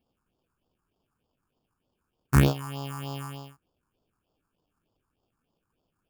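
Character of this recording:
aliases and images of a low sample rate 2,000 Hz, jitter 0%
phaser sweep stages 4, 3.3 Hz, lowest notch 550–2,000 Hz

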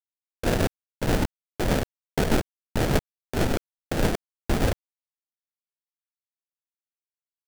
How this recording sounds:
a quantiser's noise floor 6 bits, dither none
tremolo triangle 6.5 Hz, depth 55%
aliases and images of a low sample rate 1,100 Hz, jitter 20%

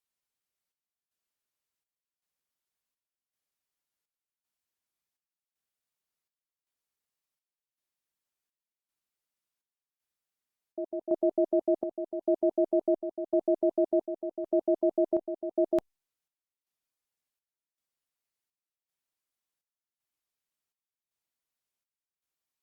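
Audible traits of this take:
chopped level 0.9 Hz, depth 65%, duty 65%
Opus

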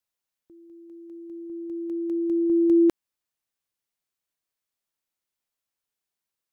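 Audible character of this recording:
background noise floor −87 dBFS
spectral slope +13.5 dB per octave

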